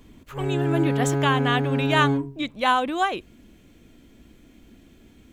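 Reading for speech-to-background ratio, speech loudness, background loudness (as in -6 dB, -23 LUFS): 0.0 dB, -25.0 LUFS, -25.0 LUFS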